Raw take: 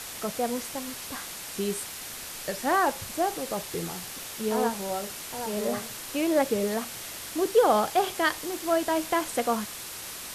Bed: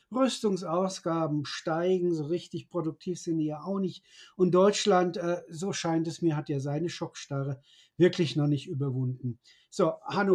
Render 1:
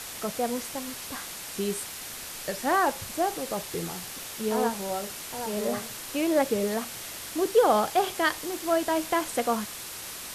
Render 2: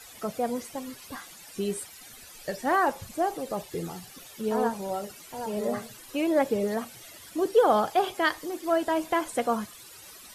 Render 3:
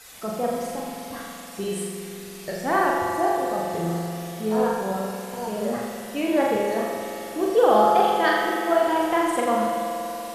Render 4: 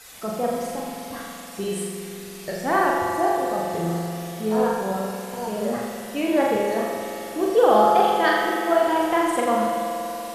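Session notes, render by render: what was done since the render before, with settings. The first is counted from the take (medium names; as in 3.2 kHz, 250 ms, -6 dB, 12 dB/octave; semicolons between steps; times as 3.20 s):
no audible change
noise reduction 14 dB, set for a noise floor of -39 dBFS
flutter echo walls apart 7.1 m, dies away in 0.87 s; spring tank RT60 3.9 s, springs 47 ms, chirp 25 ms, DRR 2 dB
trim +1 dB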